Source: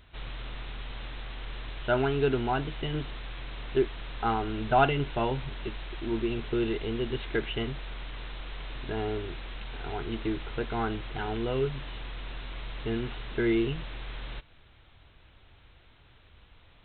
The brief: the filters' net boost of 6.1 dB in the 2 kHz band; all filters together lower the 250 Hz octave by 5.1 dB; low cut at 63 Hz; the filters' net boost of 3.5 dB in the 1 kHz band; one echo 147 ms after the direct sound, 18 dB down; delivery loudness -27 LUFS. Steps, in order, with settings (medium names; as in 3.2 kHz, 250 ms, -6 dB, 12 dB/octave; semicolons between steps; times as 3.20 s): high-pass 63 Hz; peaking EQ 250 Hz -8.5 dB; peaking EQ 1 kHz +4 dB; peaking EQ 2 kHz +7 dB; delay 147 ms -18 dB; trim +4.5 dB